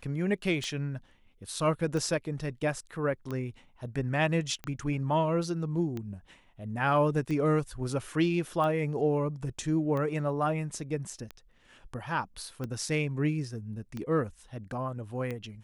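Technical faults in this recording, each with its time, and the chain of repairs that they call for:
tick 45 rpm -23 dBFS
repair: de-click

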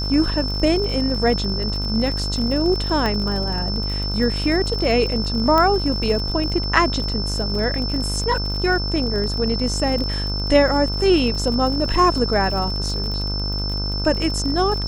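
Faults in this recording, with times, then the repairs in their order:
buzz 50 Hz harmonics 31 -25 dBFS
crackle 50/s -27 dBFS
tone 5300 Hz -26 dBFS
3.06 pop -10 dBFS
5.58 pop -7 dBFS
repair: de-click; notch 5300 Hz, Q 30; de-hum 50 Hz, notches 31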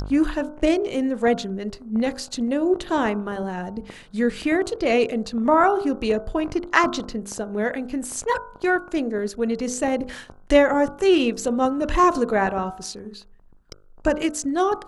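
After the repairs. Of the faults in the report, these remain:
none

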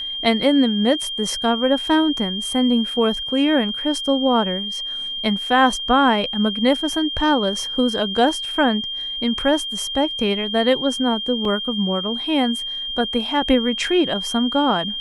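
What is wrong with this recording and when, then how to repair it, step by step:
tone 3200 Hz -25 dBFS
11.45 gap 2.8 ms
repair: notch 3200 Hz, Q 30; interpolate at 11.45, 2.8 ms

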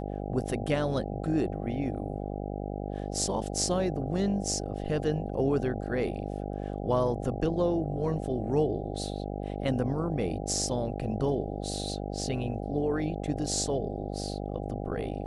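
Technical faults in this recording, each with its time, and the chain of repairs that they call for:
buzz 50 Hz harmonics 16 -35 dBFS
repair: de-hum 50 Hz, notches 16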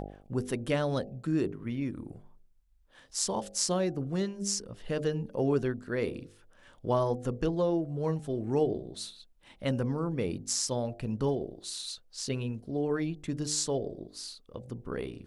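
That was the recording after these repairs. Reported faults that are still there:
none

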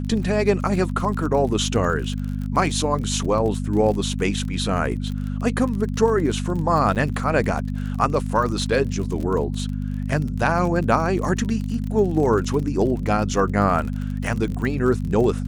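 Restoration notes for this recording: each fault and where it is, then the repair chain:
crackle 35/s -28 dBFS
hum 50 Hz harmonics 5 -26 dBFS
6.95–6.96 gap 8.4 ms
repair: de-click; de-hum 50 Hz, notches 5; interpolate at 6.95, 8.4 ms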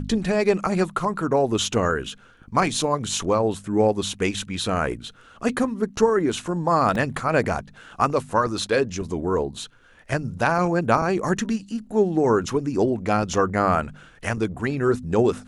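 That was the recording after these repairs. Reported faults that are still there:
none

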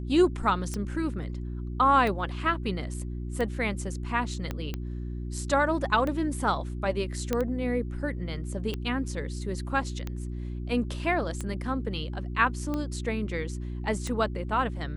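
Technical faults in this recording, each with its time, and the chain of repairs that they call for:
hum 60 Hz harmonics 6 -34 dBFS
tick 45 rpm -19 dBFS
4.51 pop -18 dBFS
7.33 pop -13 dBFS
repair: de-click; de-hum 60 Hz, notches 6

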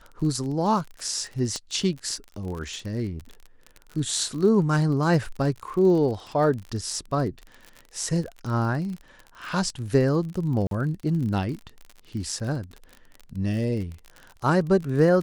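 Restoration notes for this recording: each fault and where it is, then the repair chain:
crackle 39/s -32 dBFS
1.56 pop -18 dBFS
10.67–10.71 gap 42 ms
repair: de-click; interpolate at 10.67, 42 ms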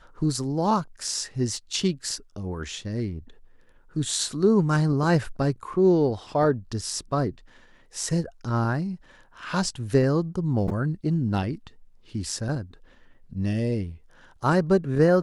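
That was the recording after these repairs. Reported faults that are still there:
1.56 pop

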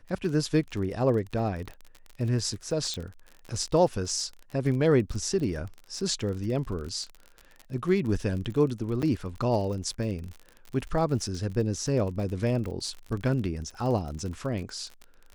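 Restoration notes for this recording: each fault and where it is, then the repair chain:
crackle 39/s -34 dBFS
2.94 pop -21 dBFS
9.02–9.03 gap 7.4 ms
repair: de-click; interpolate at 9.02, 7.4 ms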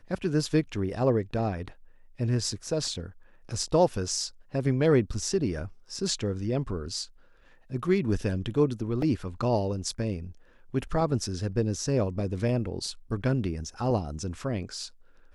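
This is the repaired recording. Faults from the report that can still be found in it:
none

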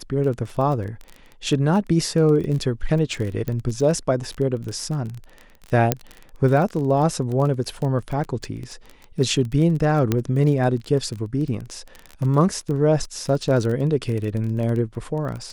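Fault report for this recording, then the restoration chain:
crackle 22/s -27 dBFS
3.48 pop -15 dBFS
5.92 pop -2 dBFS
10.12 pop -7 dBFS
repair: de-click

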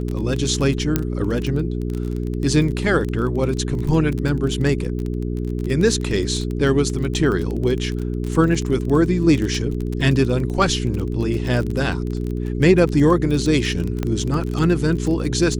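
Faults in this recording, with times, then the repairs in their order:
crackle 23/s -23 dBFS
hum 60 Hz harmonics 7 -24 dBFS
0.96 pop -4 dBFS
14.03 pop -11 dBFS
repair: de-click; de-hum 60 Hz, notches 7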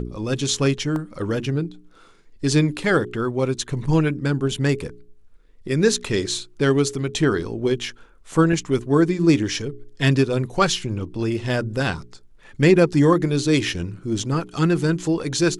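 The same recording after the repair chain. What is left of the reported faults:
0.96 pop

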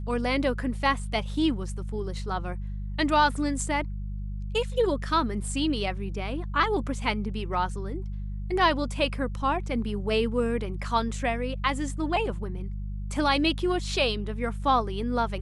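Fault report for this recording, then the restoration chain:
hum 50 Hz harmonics 4 -33 dBFS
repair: de-hum 50 Hz, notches 4

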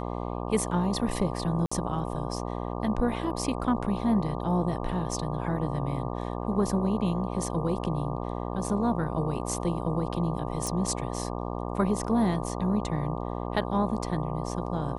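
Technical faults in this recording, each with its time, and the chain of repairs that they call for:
buzz 60 Hz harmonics 20 -33 dBFS
1.66–1.72 gap 55 ms
10.67 pop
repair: de-click; de-hum 60 Hz, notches 20; interpolate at 1.66, 55 ms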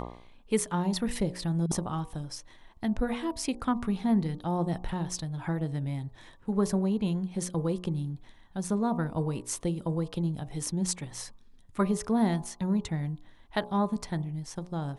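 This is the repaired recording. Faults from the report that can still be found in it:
10.67 pop

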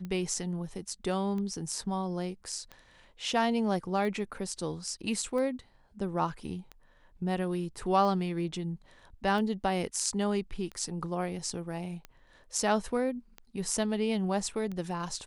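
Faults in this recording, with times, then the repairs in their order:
tick 45 rpm -27 dBFS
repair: de-click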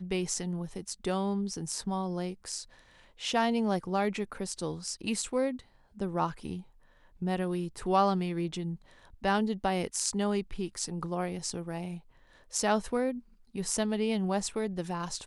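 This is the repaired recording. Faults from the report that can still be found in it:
none

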